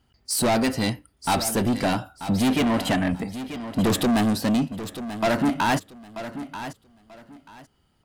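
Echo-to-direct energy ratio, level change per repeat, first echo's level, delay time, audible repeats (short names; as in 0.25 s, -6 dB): -12.0 dB, -13.0 dB, -12.0 dB, 0.936 s, 2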